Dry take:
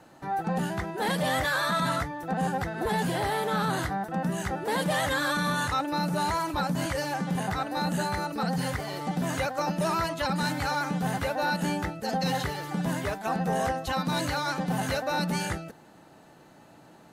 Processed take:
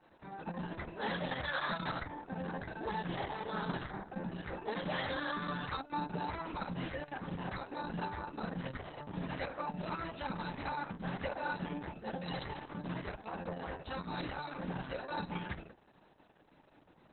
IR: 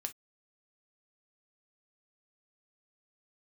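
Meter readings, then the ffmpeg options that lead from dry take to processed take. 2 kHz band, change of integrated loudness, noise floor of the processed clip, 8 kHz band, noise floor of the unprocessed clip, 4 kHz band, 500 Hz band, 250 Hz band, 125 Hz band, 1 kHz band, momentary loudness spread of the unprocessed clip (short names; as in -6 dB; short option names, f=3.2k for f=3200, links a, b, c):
-10.5 dB, -11.5 dB, -65 dBFS, under -40 dB, -54 dBFS, -12.0 dB, -11.0 dB, -11.0 dB, -11.5 dB, -11.5 dB, 4 LU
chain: -filter_complex "[0:a]bandreject=f=60:t=h:w=6,bandreject=f=120:t=h:w=6,bandreject=f=180:t=h:w=6,bandreject=f=240:t=h:w=6,bandreject=f=300:t=h:w=6[a];[1:a]atrim=start_sample=2205,asetrate=40572,aresample=44100[b];[a][b]afir=irnorm=-1:irlink=0,volume=-8.5dB" -ar 48000 -c:a libopus -b:a 6k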